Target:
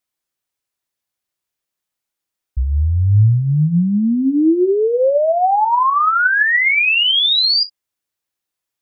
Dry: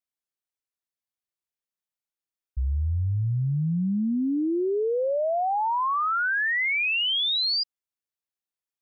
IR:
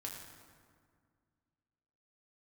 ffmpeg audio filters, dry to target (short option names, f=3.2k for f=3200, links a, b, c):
-filter_complex "[0:a]asplit=2[a][b];[1:a]atrim=start_sample=2205,atrim=end_sample=3087,asetrate=48510,aresample=44100[c];[b][c]afir=irnorm=-1:irlink=0,volume=3dB[d];[a][d]amix=inputs=2:normalize=0,volume=5.5dB"